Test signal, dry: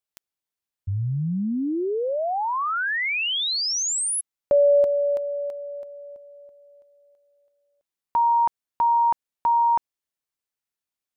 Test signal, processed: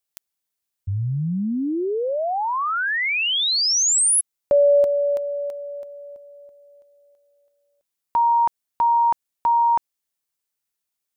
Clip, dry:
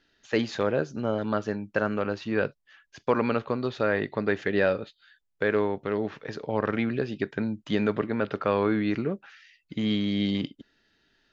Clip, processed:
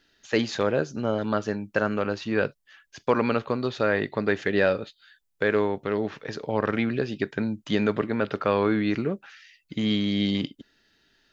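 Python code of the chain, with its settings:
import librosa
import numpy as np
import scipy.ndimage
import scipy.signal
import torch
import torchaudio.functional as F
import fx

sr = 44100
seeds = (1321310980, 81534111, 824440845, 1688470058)

y = fx.high_shelf(x, sr, hz=5100.0, db=7.5)
y = y * librosa.db_to_amplitude(1.5)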